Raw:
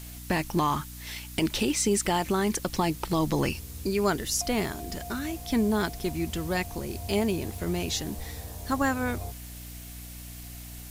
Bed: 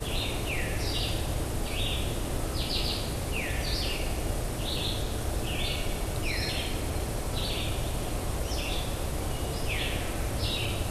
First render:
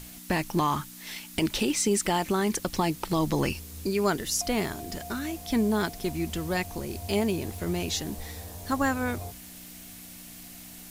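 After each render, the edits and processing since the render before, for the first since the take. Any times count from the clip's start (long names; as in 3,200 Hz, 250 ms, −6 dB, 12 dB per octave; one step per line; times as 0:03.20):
mains-hum notches 60/120 Hz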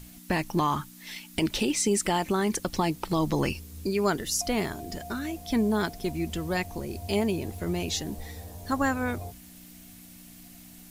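broadband denoise 6 dB, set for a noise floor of −45 dBFS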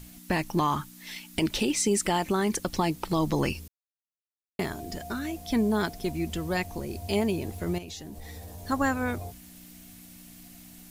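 0:03.68–0:04.59: silence
0:07.78–0:08.58: downward compressor, threshold −37 dBFS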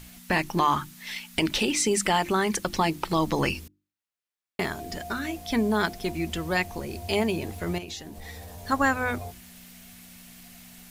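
parametric band 1,900 Hz +6 dB 2.8 octaves
mains-hum notches 50/100/150/200/250/300/350 Hz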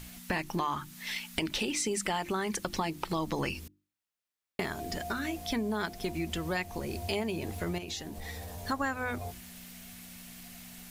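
downward compressor 3 to 1, threshold −31 dBFS, peak gain reduction 10.5 dB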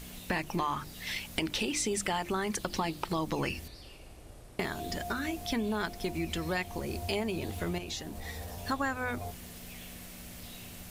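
mix in bed −20 dB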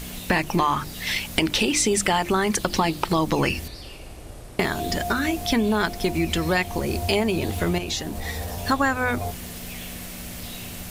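level +10.5 dB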